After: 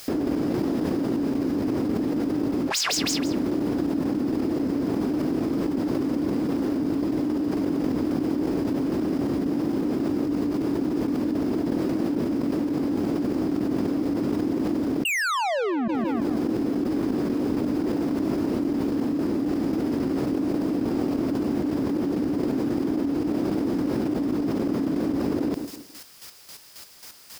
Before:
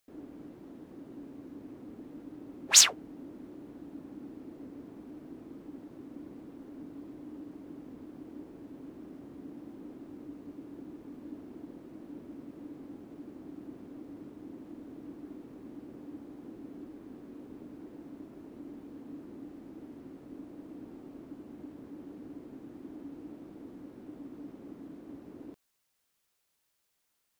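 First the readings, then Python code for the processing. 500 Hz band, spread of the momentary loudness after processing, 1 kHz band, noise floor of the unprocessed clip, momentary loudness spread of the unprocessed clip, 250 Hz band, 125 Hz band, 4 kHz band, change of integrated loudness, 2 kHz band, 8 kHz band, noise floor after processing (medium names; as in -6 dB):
+22.5 dB, 1 LU, +18.5 dB, -78 dBFS, 2 LU, +21.5 dB, +22.5 dB, +0.5 dB, +7.0 dB, +10.0 dB, -5.5 dB, -42 dBFS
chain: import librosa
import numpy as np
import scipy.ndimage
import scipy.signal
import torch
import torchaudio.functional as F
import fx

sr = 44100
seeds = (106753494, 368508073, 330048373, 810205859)

p1 = scipy.signal.sosfilt(scipy.signal.butter(2, 44.0, 'highpass', fs=sr, output='sos'), x)
p2 = fx.peak_eq(p1, sr, hz=5000.0, db=10.0, octaves=0.25)
p3 = fx.chopper(p2, sr, hz=3.7, depth_pct=60, duty_pct=30)
p4 = fx.spec_paint(p3, sr, seeds[0], shape='fall', start_s=15.05, length_s=0.83, low_hz=210.0, high_hz=2900.0, level_db=-9.0)
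p5 = 10.0 ** (-19.0 / 20.0) * np.tanh(p4 / 10.0 ** (-19.0 / 20.0))
p6 = p5 + fx.echo_feedback(p5, sr, ms=163, feedback_pct=32, wet_db=-19.0, dry=0)
p7 = fx.env_flatten(p6, sr, amount_pct=100)
y = p7 * librosa.db_to_amplitude(-5.0)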